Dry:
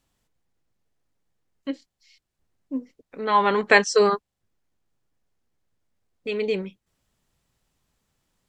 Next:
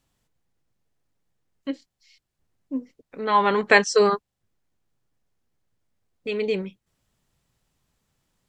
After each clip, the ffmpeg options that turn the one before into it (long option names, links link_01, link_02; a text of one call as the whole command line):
ffmpeg -i in.wav -af "equalizer=frequency=130:width_type=o:width=0.82:gain=3" out.wav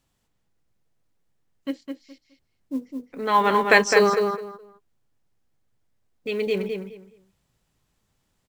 ffmpeg -i in.wav -filter_complex "[0:a]asplit=2[link_01][link_02];[link_02]adelay=209,lowpass=frequency=3300:poles=1,volume=-5dB,asplit=2[link_03][link_04];[link_04]adelay=209,lowpass=frequency=3300:poles=1,volume=0.22,asplit=2[link_05][link_06];[link_06]adelay=209,lowpass=frequency=3300:poles=1,volume=0.22[link_07];[link_01][link_03][link_05][link_07]amix=inputs=4:normalize=0,acrusher=bits=8:mode=log:mix=0:aa=0.000001" out.wav